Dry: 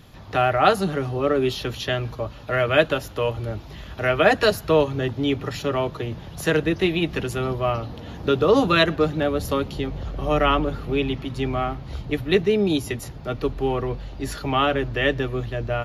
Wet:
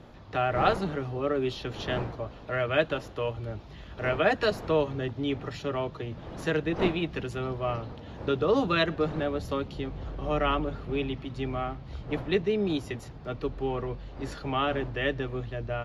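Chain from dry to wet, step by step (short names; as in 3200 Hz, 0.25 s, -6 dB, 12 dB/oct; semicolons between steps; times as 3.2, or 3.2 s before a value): wind noise 620 Hz -36 dBFS; air absorption 64 m; gain -7 dB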